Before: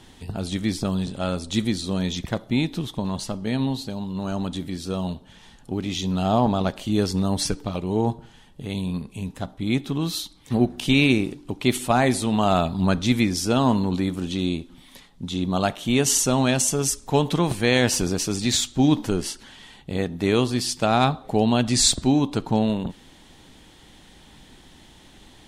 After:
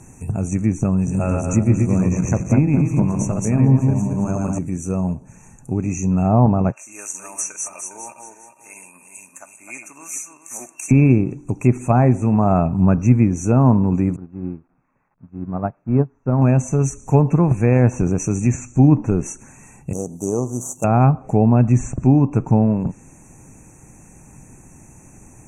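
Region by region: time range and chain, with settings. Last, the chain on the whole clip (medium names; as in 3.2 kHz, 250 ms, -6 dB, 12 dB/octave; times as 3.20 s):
0.97–4.59 s: backward echo that repeats 113 ms, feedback 57%, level -2 dB + treble shelf 6.5 kHz +8.5 dB
6.72–10.91 s: backward echo that repeats 203 ms, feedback 51%, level -5 dB + high-pass 1.4 kHz + comb 3.3 ms, depth 38%
14.16–16.42 s: zero-crossing glitches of -15 dBFS + low-pass 1.5 kHz 24 dB/octave + upward expansion 2.5:1, over -33 dBFS
19.93–20.84 s: median filter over 15 samples + Butterworth band-stop 2.1 kHz, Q 0.56 + RIAA curve recording
whole clip: low-pass that closes with the level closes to 1.7 kHz, closed at -16.5 dBFS; FFT band-reject 2.7–5.8 kHz; ten-band graphic EQ 125 Hz +10 dB, 2 kHz -10 dB, 4 kHz +11 dB, 8 kHz +7 dB; trim +2.5 dB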